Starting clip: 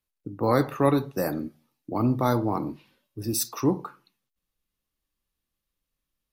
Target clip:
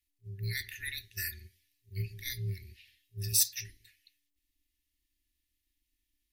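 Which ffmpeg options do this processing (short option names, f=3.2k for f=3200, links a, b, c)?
-af "afftfilt=real='re*(1-between(b*sr/4096,110,1700))':imag='im*(1-between(b*sr/4096,110,1700))':win_size=4096:overlap=0.75,tremolo=f=290:d=0.4,volume=4dB"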